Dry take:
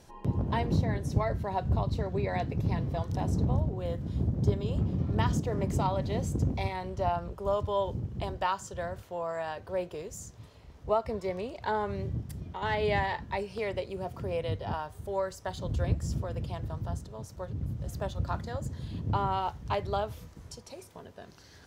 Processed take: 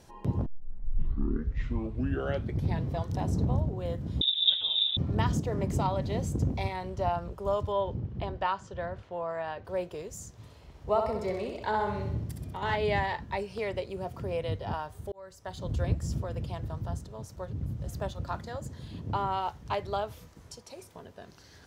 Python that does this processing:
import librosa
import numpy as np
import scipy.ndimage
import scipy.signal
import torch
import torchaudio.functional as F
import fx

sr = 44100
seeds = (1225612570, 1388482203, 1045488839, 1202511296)

y = fx.freq_invert(x, sr, carrier_hz=3700, at=(4.21, 4.97))
y = fx.lowpass(y, sr, hz=3600.0, slope=12, at=(7.72, 9.65))
y = fx.echo_feedback(y, sr, ms=64, feedback_pct=53, wet_db=-5, at=(10.32, 12.76))
y = fx.low_shelf(y, sr, hz=210.0, db=-6.0, at=(18.12, 20.77))
y = fx.edit(y, sr, fx.tape_start(start_s=0.46, length_s=2.4),
    fx.fade_in_span(start_s=15.12, length_s=0.58), tone=tone)